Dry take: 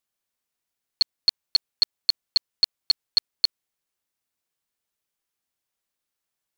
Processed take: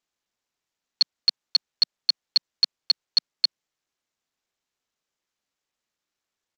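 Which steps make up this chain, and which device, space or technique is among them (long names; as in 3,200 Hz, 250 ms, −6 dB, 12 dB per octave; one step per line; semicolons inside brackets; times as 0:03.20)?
Bluetooth headset (high-pass filter 180 Hz 24 dB per octave; downsampling to 16,000 Hz; SBC 64 kbit/s 32,000 Hz)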